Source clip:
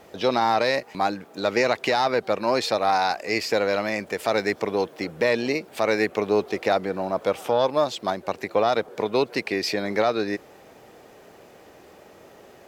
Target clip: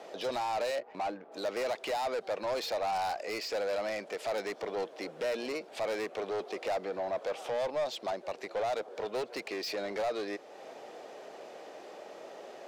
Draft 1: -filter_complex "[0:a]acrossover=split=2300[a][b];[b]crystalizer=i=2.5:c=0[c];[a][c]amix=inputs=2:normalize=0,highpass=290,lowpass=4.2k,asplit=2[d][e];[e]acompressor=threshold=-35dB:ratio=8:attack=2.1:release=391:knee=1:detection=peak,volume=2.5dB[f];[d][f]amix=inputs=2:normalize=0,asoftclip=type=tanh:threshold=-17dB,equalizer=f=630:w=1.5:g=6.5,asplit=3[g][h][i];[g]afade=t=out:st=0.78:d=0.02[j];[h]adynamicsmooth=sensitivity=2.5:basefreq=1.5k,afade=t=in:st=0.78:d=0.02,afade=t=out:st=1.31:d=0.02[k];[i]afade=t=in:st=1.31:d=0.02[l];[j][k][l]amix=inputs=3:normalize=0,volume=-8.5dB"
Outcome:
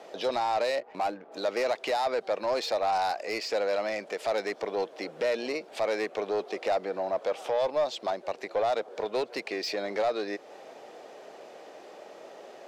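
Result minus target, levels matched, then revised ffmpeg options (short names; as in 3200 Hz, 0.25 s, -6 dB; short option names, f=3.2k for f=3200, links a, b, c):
compressor: peak gain reduction -6 dB; soft clip: distortion -6 dB
-filter_complex "[0:a]acrossover=split=2300[a][b];[b]crystalizer=i=2.5:c=0[c];[a][c]amix=inputs=2:normalize=0,highpass=290,lowpass=4.2k,asplit=2[d][e];[e]acompressor=threshold=-42dB:ratio=8:attack=2.1:release=391:knee=1:detection=peak,volume=2.5dB[f];[d][f]amix=inputs=2:normalize=0,asoftclip=type=tanh:threshold=-25dB,equalizer=f=630:w=1.5:g=6.5,asplit=3[g][h][i];[g]afade=t=out:st=0.78:d=0.02[j];[h]adynamicsmooth=sensitivity=2.5:basefreq=1.5k,afade=t=in:st=0.78:d=0.02,afade=t=out:st=1.31:d=0.02[k];[i]afade=t=in:st=1.31:d=0.02[l];[j][k][l]amix=inputs=3:normalize=0,volume=-8.5dB"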